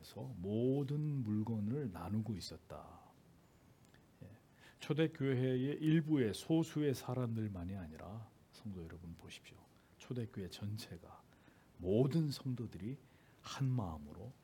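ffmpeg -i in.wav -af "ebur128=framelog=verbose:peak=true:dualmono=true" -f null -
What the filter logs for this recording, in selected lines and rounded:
Integrated loudness:
  I:         -36.2 LUFS
  Threshold: -48.0 LUFS
Loudness range:
  LRA:        12.1 LU
  Threshold: -58.1 LUFS
  LRA low:   -46.4 LUFS
  LRA high:  -34.3 LUFS
True peak:
  Peak:      -20.7 dBFS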